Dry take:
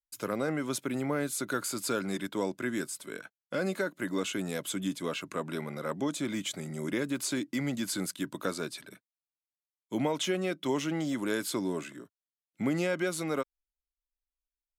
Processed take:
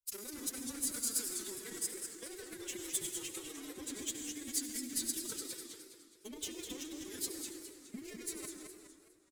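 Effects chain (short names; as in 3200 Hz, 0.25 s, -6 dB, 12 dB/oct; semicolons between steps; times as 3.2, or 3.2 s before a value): in parallel at -8.5 dB: wavefolder -32 dBFS; on the sum: granular stretch 0.63×, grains 65 ms; feedback echo 90 ms, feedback 23%, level -20 dB; compressor 16:1, threshold -36 dBFS, peak gain reduction 11 dB; tone controls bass -1 dB, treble +8 dB; reverb RT60 2.6 s, pre-delay 68 ms, DRR 3 dB; power-law curve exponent 1.4; formant-preserving pitch shift +11.5 st; bell 790 Hz -14.5 dB 2.7 oct; warbling echo 0.207 s, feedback 44%, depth 214 cents, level -7 dB; gain +5 dB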